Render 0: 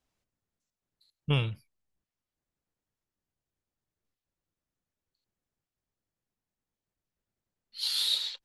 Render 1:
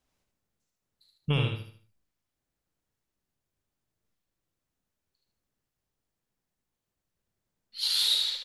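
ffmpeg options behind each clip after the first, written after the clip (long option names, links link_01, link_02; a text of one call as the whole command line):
ffmpeg -i in.wav -filter_complex "[0:a]alimiter=limit=-18.5dB:level=0:latency=1:release=82,asplit=2[link_01][link_02];[link_02]aecho=0:1:75|150|225|300|375:0.631|0.233|0.0864|0.032|0.0118[link_03];[link_01][link_03]amix=inputs=2:normalize=0,volume=2.5dB" out.wav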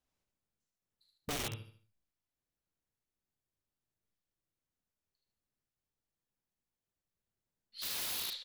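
ffmpeg -i in.wav -af "aeval=exprs='(mod(16.8*val(0)+1,2)-1)/16.8':channel_layout=same,volume=-8.5dB" out.wav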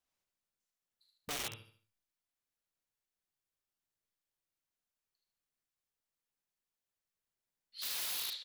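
ffmpeg -i in.wav -af "lowshelf=frequency=440:gain=-10.5" out.wav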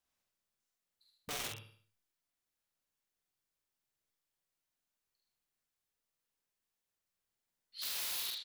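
ffmpeg -i in.wav -filter_complex "[0:a]asplit=2[link_01][link_02];[link_02]adelay=47,volume=-4dB[link_03];[link_01][link_03]amix=inputs=2:normalize=0,asplit=2[link_04][link_05];[link_05]alimiter=level_in=9.5dB:limit=-24dB:level=0:latency=1:release=495,volume=-9.5dB,volume=3dB[link_06];[link_04][link_06]amix=inputs=2:normalize=0,volume=-7dB" out.wav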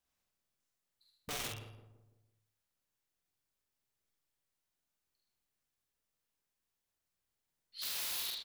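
ffmpeg -i in.wav -filter_complex "[0:a]lowshelf=frequency=160:gain=5,asplit=2[link_01][link_02];[link_02]adelay=167,lowpass=frequency=880:poles=1,volume=-9dB,asplit=2[link_03][link_04];[link_04]adelay=167,lowpass=frequency=880:poles=1,volume=0.48,asplit=2[link_05][link_06];[link_06]adelay=167,lowpass=frequency=880:poles=1,volume=0.48,asplit=2[link_07][link_08];[link_08]adelay=167,lowpass=frequency=880:poles=1,volume=0.48,asplit=2[link_09][link_10];[link_10]adelay=167,lowpass=frequency=880:poles=1,volume=0.48[link_11];[link_01][link_03][link_05][link_07][link_09][link_11]amix=inputs=6:normalize=0" out.wav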